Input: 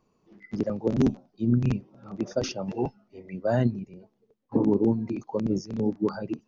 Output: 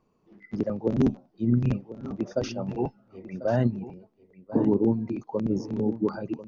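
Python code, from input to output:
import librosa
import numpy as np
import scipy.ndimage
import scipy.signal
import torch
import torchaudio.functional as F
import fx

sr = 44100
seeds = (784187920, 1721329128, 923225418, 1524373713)

p1 = fx.high_shelf(x, sr, hz=4600.0, db=-9.5)
y = p1 + fx.echo_single(p1, sr, ms=1043, db=-15.0, dry=0)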